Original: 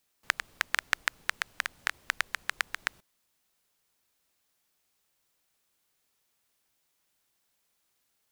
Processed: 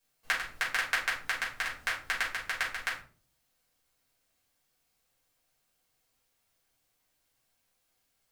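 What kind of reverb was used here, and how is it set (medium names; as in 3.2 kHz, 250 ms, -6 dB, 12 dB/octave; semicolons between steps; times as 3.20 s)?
simulated room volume 250 m³, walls furnished, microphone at 5.3 m; trim -8.5 dB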